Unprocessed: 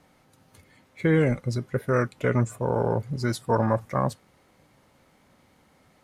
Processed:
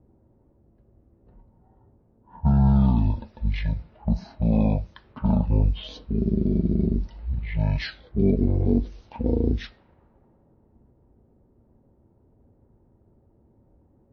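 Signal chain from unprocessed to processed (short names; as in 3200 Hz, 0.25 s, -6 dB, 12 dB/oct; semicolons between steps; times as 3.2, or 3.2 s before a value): low-pass opened by the level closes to 1100 Hz, open at -22.5 dBFS; speed mistake 78 rpm record played at 33 rpm; dynamic EQ 650 Hz, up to -7 dB, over -43 dBFS, Q 1.6; gain +2.5 dB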